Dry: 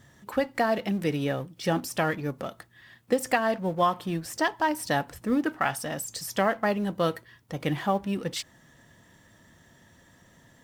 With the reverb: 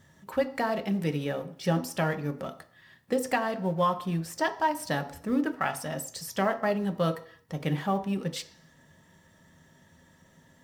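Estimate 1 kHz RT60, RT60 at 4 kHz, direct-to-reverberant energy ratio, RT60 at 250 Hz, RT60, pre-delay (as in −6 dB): 0.55 s, 0.60 s, 7.5 dB, 0.50 s, 0.55 s, 3 ms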